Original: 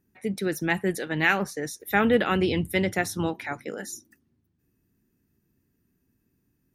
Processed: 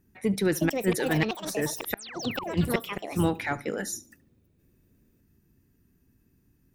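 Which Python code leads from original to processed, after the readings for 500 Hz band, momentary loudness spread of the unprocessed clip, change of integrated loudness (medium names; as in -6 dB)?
-2.5 dB, 13 LU, -3.0 dB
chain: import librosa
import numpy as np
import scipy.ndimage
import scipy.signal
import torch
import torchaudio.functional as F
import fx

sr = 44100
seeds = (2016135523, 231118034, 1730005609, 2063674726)

p1 = x + fx.echo_feedback(x, sr, ms=72, feedback_pct=28, wet_db=-21.0, dry=0)
p2 = fx.gate_flip(p1, sr, shuts_db=-14.0, range_db=-40)
p3 = fx.spec_paint(p2, sr, seeds[0], shape='fall', start_s=2.19, length_s=0.37, low_hz=310.0, high_hz=6800.0, level_db=-41.0)
p4 = fx.echo_pitch(p3, sr, ms=438, semitones=6, count=2, db_per_echo=-6.0)
p5 = fx.low_shelf(p4, sr, hz=82.0, db=9.5)
p6 = 10.0 ** (-27.5 / 20.0) * np.tanh(p5 / 10.0 ** (-27.5 / 20.0))
y = p5 + (p6 * 10.0 ** (-6.0 / 20.0))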